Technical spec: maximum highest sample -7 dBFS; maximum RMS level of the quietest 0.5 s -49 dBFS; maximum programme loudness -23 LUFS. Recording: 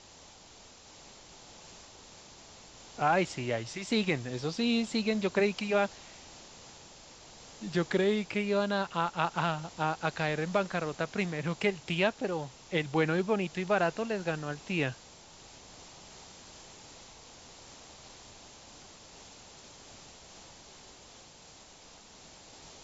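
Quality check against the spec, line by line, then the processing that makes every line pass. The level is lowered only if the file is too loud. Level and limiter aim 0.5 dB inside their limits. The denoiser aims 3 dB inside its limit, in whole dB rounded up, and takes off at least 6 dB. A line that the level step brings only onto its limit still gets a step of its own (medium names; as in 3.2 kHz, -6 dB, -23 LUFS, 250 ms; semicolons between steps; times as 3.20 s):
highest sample -13.5 dBFS: pass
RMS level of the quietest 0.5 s -54 dBFS: pass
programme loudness -31.0 LUFS: pass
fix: none needed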